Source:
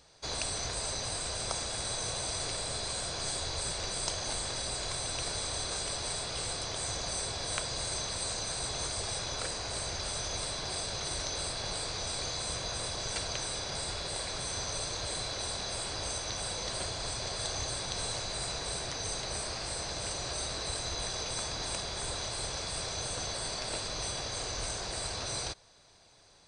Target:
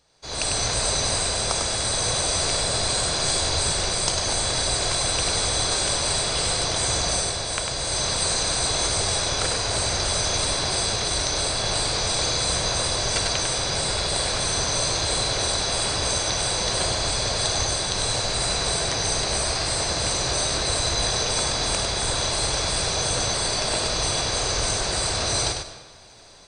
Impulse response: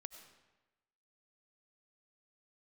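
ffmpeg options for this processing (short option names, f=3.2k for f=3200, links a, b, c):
-filter_complex "[0:a]dynaudnorm=f=230:g=3:m=16dB,asplit=2[a][b];[1:a]atrim=start_sample=2205,adelay=99[c];[b][c]afir=irnorm=-1:irlink=0,volume=1dB[d];[a][d]amix=inputs=2:normalize=0,volume=-5dB"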